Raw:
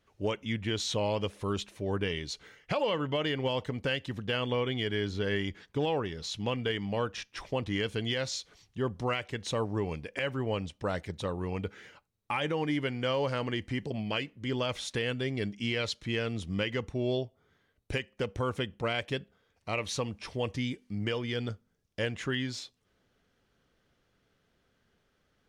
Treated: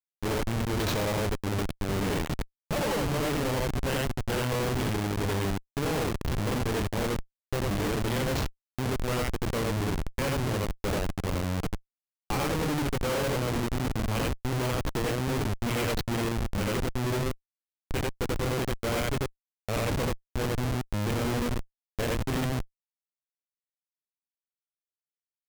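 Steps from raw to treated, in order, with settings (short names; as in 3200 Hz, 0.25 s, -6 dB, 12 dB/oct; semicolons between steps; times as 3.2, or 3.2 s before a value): loudspeakers at several distances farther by 10 m -10 dB, 30 m 0 dB; Schmitt trigger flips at -28 dBFS; gain +3 dB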